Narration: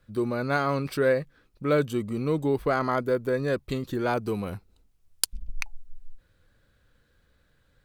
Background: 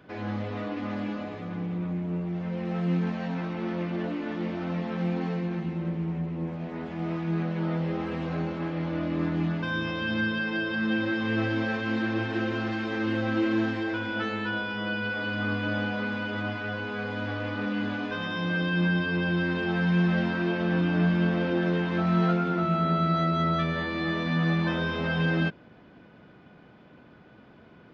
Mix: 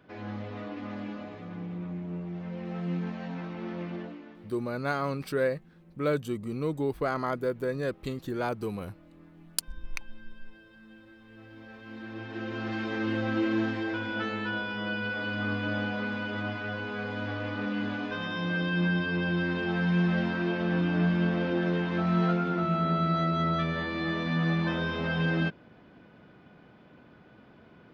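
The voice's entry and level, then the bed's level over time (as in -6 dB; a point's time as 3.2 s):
4.35 s, -4.5 dB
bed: 3.94 s -5.5 dB
4.62 s -26 dB
11.28 s -26 dB
12.78 s -2 dB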